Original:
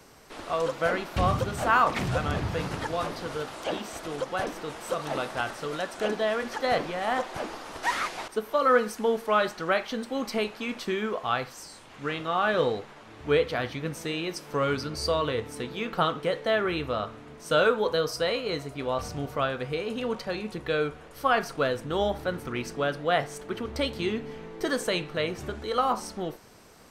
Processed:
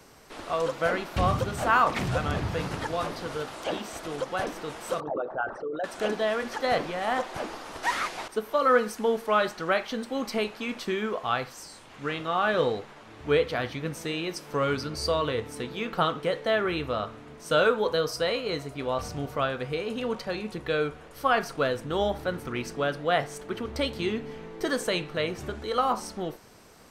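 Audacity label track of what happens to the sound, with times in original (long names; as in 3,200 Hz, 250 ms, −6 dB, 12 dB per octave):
5.000000	5.840000	spectral envelope exaggerated exponent 3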